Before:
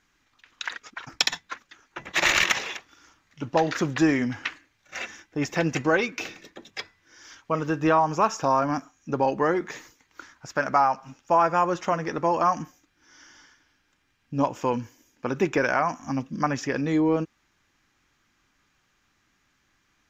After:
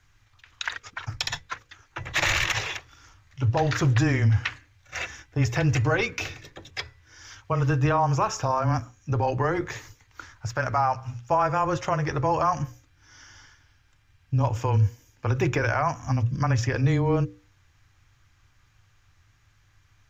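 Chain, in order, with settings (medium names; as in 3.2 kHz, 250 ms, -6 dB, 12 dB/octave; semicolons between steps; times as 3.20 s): frequency shift -13 Hz; resonant low shelf 150 Hz +11.5 dB, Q 3; peak limiter -15.5 dBFS, peak gain reduction 9.5 dB; hum notches 60/120/180/240/300/360/420/480/540 Hz; trim +2 dB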